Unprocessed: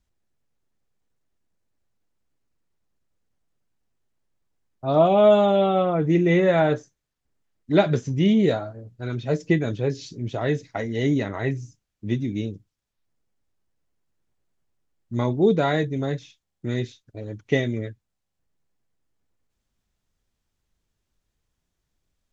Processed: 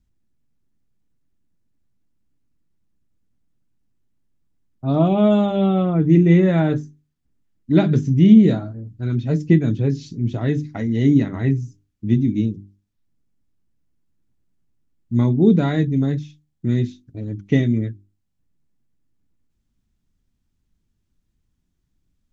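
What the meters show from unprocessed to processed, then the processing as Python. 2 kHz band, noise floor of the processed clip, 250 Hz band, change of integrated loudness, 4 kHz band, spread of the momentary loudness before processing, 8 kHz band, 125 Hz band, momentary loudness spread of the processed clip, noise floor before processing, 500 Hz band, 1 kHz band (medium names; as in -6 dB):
-3.0 dB, -72 dBFS, +7.5 dB, +4.0 dB, -2.5 dB, 16 LU, no reading, +8.0 dB, 15 LU, -80 dBFS, -2.5 dB, -4.0 dB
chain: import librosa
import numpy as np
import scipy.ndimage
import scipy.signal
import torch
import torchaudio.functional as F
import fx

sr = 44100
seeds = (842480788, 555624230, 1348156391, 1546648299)

y = fx.low_shelf_res(x, sr, hz=370.0, db=10.0, q=1.5)
y = fx.hum_notches(y, sr, base_hz=50, count=8)
y = y * librosa.db_to_amplitude(-2.5)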